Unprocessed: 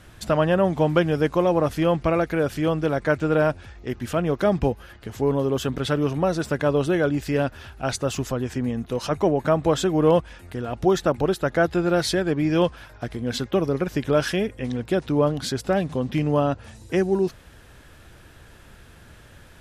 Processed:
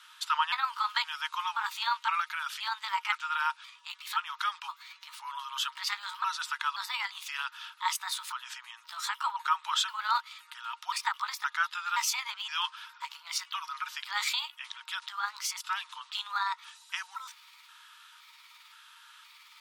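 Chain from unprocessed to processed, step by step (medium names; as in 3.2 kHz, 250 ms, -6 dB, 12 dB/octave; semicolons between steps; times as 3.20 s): pitch shift switched off and on +5.5 st, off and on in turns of 520 ms; rippled Chebyshev high-pass 900 Hz, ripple 9 dB; trim +4.5 dB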